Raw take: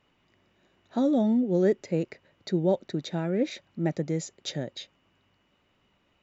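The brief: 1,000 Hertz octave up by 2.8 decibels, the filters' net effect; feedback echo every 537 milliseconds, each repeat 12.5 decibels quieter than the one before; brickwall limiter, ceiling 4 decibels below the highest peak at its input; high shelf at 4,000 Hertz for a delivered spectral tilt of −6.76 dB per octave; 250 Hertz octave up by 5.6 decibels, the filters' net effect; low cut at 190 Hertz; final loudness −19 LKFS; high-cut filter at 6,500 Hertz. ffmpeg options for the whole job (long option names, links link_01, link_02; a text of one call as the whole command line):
ffmpeg -i in.wav -af "highpass=190,lowpass=6500,equalizer=frequency=250:width_type=o:gain=8.5,equalizer=frequency=1000:width_type=o:gain=3,highshelf=frequency=4000:gain=4.5,alimiter=limit=-13.5dB:level=0:latency=1,aecho=1:1:537|1074|1611:0.237|0.0569|0.0137,volume=6dB" out.wav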